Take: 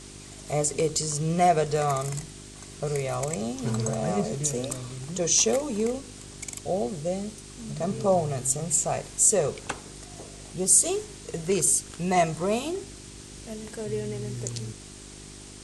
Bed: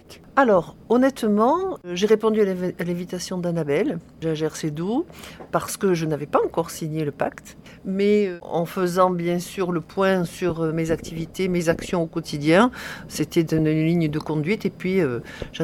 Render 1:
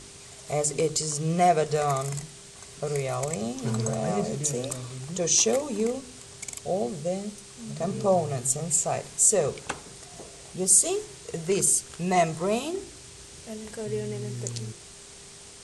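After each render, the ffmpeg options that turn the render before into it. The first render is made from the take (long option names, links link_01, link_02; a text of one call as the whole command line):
ffmpeg -i in.wav -af "bandreject=frequency=50:width_type=h:width=4,bandreject=frequency=100:width_type=h:width=4,bandreject=frequency=150:width_type=h:width=4,bandreject=frequency=200:width_type=h:width=4,bandreject=frequency=250:width_type=h:width=4,bandreject=frequency=300:width_type=h:width=4,bandreject=frequency=350:width_type=h:width=4" out.wav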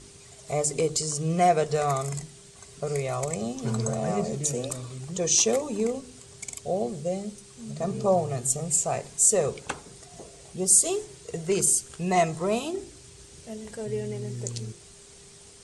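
ffmpeg -i in.wav -af "afftdn=noise_reduction=6:noise_floor=-47" out.wav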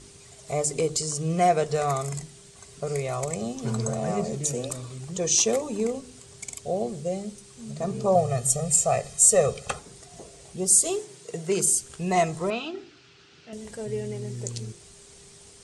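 ffmpeg -i in.wav -filter_complex "[0:a]asettb=1/sr,asplit=3[link_01][link_02][link_03];[link_01]atrim=end=8.154[link_04];[link_02]atrim=start=8.15:end=9.79,asetpts=PTS-STARTPTS,afade=type=in:duration=0.004:curve=qsin,afade=type=out:start_time=1.636:duration=0.004:curve=qsin,aecho=1:1:1.6:1,atrim=end_sample=72324[link_05];[link_03]atrim=start=9.786[link_06];[link_04][link_05]acrossfade=duration=0.004:curve1=hsin:curve2=qsin[link_07];[link_07][link_06]acrossfade=duration=0.004:curve1=qsin:curve2=hsin,asettb=1/sr,asplit=3[link_08][link_09][link_10];[link_08]atrim=end=10.994[link_11];[link_09]atrim=start=10.99:end=11.74,asetpts=PTS-STARTPTS,afade=type=in:duration=0.004:curve=qsin,afade=type=out:start_time=0.746:duration=0.004:curve=qsin,highpass=frequency=130:width=0.5412,highpass=frequency=130:width=1.3066[link_12];[link_10]atrim=start=11.736[link_13];[link_11][link_12]acrossfade=duration=0.004:curve1=hsin:curve2=qsin[link_14];[link_14][link_13]acrossfade=duration=0.004:curve1=qsin:curve2=hsin,asettb=1/sr,asplit=3[link_15][link_16][link_17];[link_15]atrim=end=12.504[link_18];[link_16]atrim=start=12.5:end=13.53,asetpts=PTS-STARTPTS,afade=type=in:duration=0.004:curve=qsin,afade=type=out:start_time=1.026:duration=0.004:curve=qsin,highpass=190,equalizer=frequency=210:width_type=q:width=4:gain=-4,equalizer=frequency=390:width_type=q:width=4:gain=-4,equalizer=frequency=560:width_type=q:width=4:gain=-9,equalizer=frequency=980:width_type=q:width=4:gain=-4,equalizer=frequency=1400:width_type=q:width=4:gain=8,equalizer=frequency=2700:width_type=q:width=4:gain=5,lowpass=frequency=4700:width=0.5412,lowpass=frequency=4700:width=1.3066[link_19];[link_17]atrim=start=13.526[link_20];[link_18][link_19]acrossfade=duration=0.004:curve1=hsin:curve2=qsin[link_21];[link_21][link_20]acrossfade=duration=0.004:curve1=qsin:curve2=hsin" out.wav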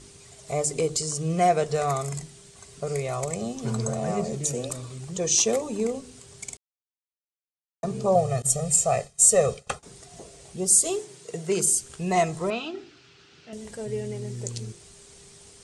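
ffmpeg -i in.wav -filter_complex "[0:a]asettb=1/sr,asplit=3[link_01][link_02][link_03];[link_01]atrim=end=8.424[link_04];[link_02]atrim=start=8.42:end=9.83,asetpts=PTS-STARTPTS,afade=type=in:duration=0.004:curve=qsin,afade=type=out:start_time=1.406:duration=0.004:curve=qsin,agate=range=-33dB:threshold=-33dB:ratio=3:release=100:detection=peak[link_05];[link_03]atrim=start=9.826[link_06];[link_04][link_05]acrossfade=duration=0.004:curve1=hsin:curve2=qsin[link_07];[link_07][link_06]acrossfade=duration=0.004:curve1=qsin:curve2=hsin,asplit=3[link_08][link_09][link_10];[link_08]atrim=end=6.57,asetpts=PTS-STARTPTS,afade=type=out:start_time=6.566:duration=0.004:curve=hsin[link_11];[link_09]atrim=start=6.57:end=7.83,asetpts=PTS-STARTPTS,volume=0[link_12];[link_10]atrim=start=7.83,asetpts=PTS-STARTPTS,afade=type=in:duration=0.004:curve=hsin[link_13];[link_11][link_12][link_13]concat=n=3:v=0:a=1" out.wav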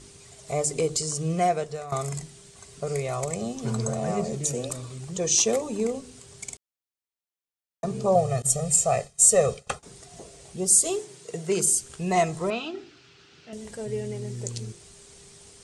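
ffmpeg -i in.wav -filter_complex "[0:a]asplit=2[link_01][link_02];[link_01]atrim=end=1.92,asetpts=PTS-STARTPTS,afade=type=out:start_time=1.27:duration=0.65:silence=0.158489[link_03];[link_02]atrim=start=1.92,asetpts=PTS-STARTPTS,afade=type=in:duration=0.004:curve=hsin:silence=0.158489[link_04];[link_03][link_04]concat=n=2:v=0:a=1" out.wav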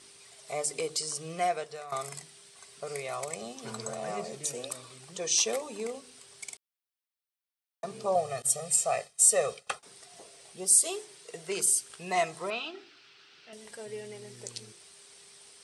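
ffmpeg -i in.wav -af "highpass=frequency=1100:poles=1,equalizer=frequency=6900:width_type=o:width=0.35:gain=-9.5" out.wav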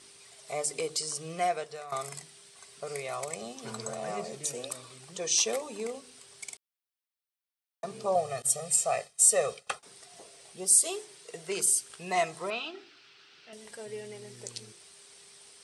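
ffmpeg -i in.wav -af anull out.wav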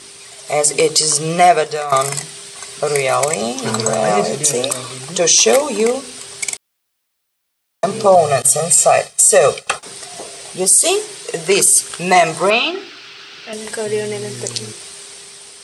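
ffmpeg -i in.wav -af "dynaudnorm=framelen=110:gausssize=13:maxgain=4.5dB,alimiter=level_in=16dB:limit=-1dB:release=50:level=0:latency=1" out.wav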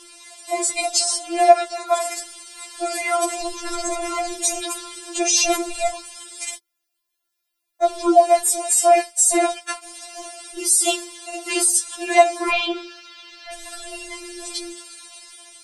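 ffmpeg -i in.wav -af "tremolo=f=230:d=0.824,afftfilt=real='re*4*eq(mod(b,16),0)':imag='im*4*eq(mod(b,16),0)':win_size=2048:overlap=0.75" out.wav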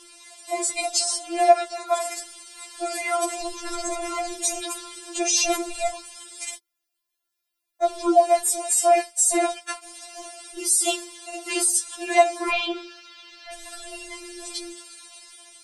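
ffmpeg -i in.wav -af "volume=-3.5dB" out.wav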